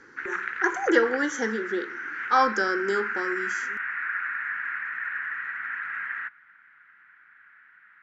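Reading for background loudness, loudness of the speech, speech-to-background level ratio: -31.0 LUFS, -26.0 LUFS, 5.0 dB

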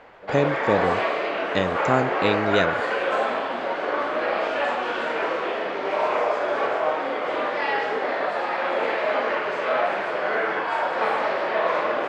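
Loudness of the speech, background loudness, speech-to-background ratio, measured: -25.0 LUFS, -24.5 LUFS, -0.5 dB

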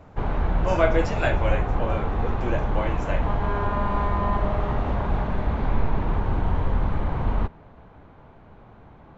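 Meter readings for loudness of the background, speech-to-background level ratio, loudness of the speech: -26.5 LUFS, -2.0 dB, -28.5 LUFS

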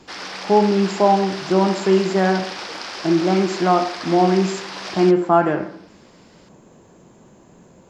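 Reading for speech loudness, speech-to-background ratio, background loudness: -18.5 LUFS, 12.0 dB, -30.5 LUFS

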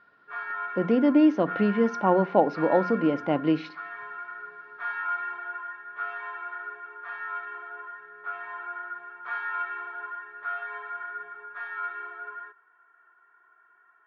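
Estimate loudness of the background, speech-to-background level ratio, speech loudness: -35.5 LUFS, 12.0 dB, -23.5 LUFS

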